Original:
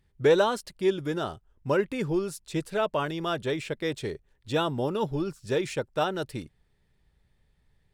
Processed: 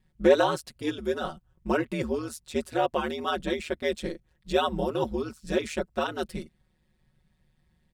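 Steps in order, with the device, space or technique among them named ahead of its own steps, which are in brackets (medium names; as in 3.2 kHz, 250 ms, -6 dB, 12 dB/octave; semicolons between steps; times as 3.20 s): ring-modulated robot voice (ring modulator 77 Hz; comb 5.4 ms, depth 75%); trim +1 dB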